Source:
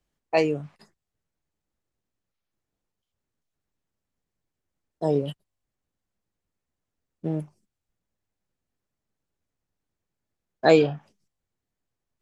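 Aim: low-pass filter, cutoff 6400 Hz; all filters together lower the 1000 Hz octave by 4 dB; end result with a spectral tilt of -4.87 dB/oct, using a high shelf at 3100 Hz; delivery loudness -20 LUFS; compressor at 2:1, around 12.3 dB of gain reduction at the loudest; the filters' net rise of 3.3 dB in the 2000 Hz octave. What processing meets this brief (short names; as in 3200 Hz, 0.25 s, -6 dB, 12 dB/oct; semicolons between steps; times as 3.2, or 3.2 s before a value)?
LPF 6400 Hz; bell 1000 Hz -7.5 dB; bell 2000 Hz +3.5 dB; high shelf 3100 Hz +6.5 dB; compressor 2:1, threshold -35 dBFS; gain +15 dB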